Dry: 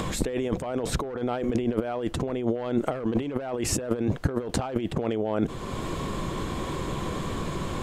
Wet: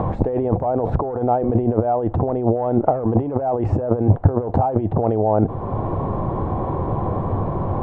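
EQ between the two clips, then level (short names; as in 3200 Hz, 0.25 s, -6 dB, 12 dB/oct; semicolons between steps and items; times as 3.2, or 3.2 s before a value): synth low-pass 800 Hz, resonance Q 3.5; bell 100 Hz +12 dB 0.63 oct; +4.5 dB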